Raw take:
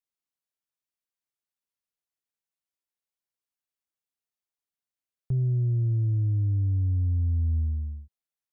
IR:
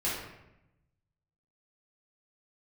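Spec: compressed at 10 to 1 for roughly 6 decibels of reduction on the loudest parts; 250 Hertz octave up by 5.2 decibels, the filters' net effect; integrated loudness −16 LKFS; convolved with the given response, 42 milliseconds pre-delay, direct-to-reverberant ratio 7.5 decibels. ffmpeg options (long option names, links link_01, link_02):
-filter_complex "[0:a]equalizer=frequency=250:width_type=o:gain=9,acompressor=threshold=-27dB:ratio=10,asplit=2[link_01][link_02];[1:a]atrim=start_sample=2205,adelay=42[link_03];[link_02][link_03]afir=irnorm=-1:irlink=0,volume=-15dB[link_04];[link_01][link_04]amix=inputs=2:normalize=0,volume=13.5dB"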